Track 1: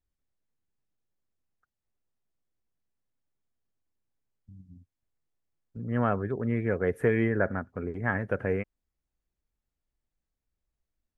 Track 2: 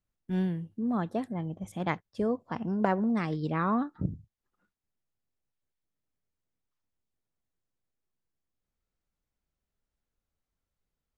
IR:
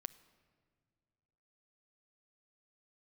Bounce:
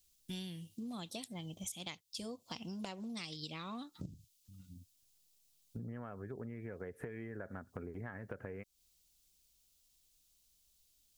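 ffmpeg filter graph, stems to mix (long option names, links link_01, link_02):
-filter_complex "[0:a]acompressor=threshold=-30dB:ratio=6,volume=1.5dB[link_01];[1:a]acontrast=70,bandreject=frequency=420:width=12,aexciter=amount=12.1:drive=8.2:freq=2600,volume=-12.5dB,asplit=2[link_02][link_03];[link_03]apad=whole_len=492737[link_04];[link_01][link_04]sidechaincompress=threshold=-49dB:ratio=8:attack=16:release=695[link_05];[link_05][link_02]amix=inputs=2:normalize=0,acompressor=threshold=-41dB:ratio=10"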